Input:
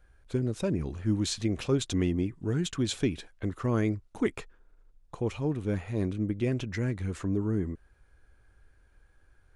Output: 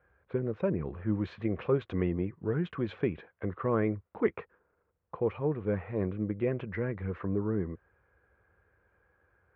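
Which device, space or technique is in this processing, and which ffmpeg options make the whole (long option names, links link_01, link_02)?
bass cabinet: -af "highpass=frequency=76:width=0.5412,highpass=frequency=76:width=1.3066,equalizer=frequency=79:width_type=q:width=4:gain=-3,equalizer=frequency=120:width_type=q:width=4:gain=-6,equalizer=frequency=270:width_type=q:width=4:gain=-8,equalizer=frequency=490:width_type=q:width=4:gain=6,equalizer=frequency=1100:width_type=q:width=4:gain=4,lowpass=frequency=2200:width=0.5412,lowpass=frequency=2200:width=1.3066"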